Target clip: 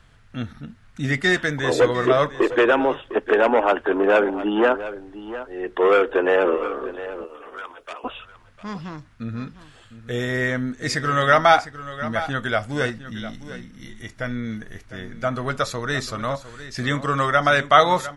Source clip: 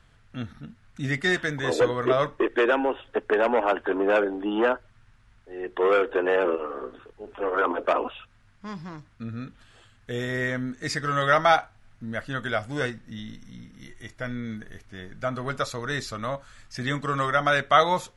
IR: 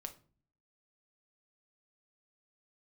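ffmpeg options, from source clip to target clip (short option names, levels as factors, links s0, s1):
-filter_complex "[0:a]asettb=1/sr,asplit=3[s0][s1][s2];[s0]atrim=end=7.244[s3];[s1]atrim=start=7.24:end=8.04,asetpts=PTS-STARTPTS,afade=t=in:d=0.004:c=qsin,afade=t=out:st=0.796:d=0.004:c=qsin,aderivative[s4];[s2]atrim=start=8.036[s5];[s3][s4]acrossfade=d=0.004:c1=hsin:c2=qsin[s6];[s6][s5]acrossfade=d=0.004:c1=qsin:c2=hsin,aecho=1:1:704:0.2,volume=1.68"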